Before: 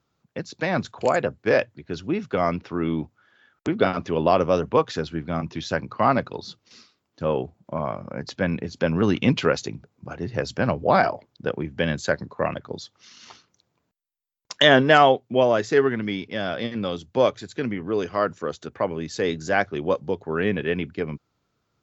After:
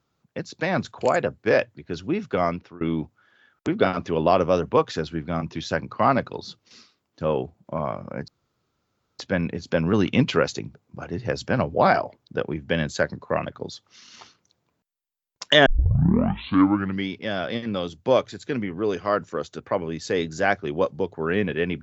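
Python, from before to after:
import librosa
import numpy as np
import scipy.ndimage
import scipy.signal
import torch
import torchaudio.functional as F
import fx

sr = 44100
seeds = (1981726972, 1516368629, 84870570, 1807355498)

y = fx.edit(x, sr, fx.fade_out_to(start_s=2.43, length_s=0.38, floor_db=-24.0),
    fx.insert_room_tone(at_s=8.28, length_s=0.91),
    fx.tape_start(start_s=14.75, length_s=1.41), tone=tone)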